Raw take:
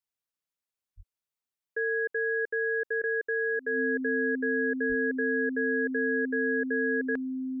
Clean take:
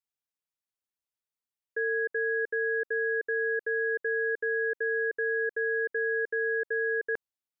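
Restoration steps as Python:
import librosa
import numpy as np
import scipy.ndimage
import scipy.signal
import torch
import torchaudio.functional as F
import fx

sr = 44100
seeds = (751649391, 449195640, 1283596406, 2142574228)

y = fx.notch(x, sr, hz=260.0, q=30.0)
y = fx.highpass(y, sr, hz=140.0, slope=24, at=(0.96, 1.08), fade=0.02)
y = fx.highpass(y, sr, hz=140.0, slope=24, at=(4.88, 5.0), fade=0.02)
y = fx.fix_interpolate(y, sr, at_s=(2.49, 3.02), length_ms=16.0)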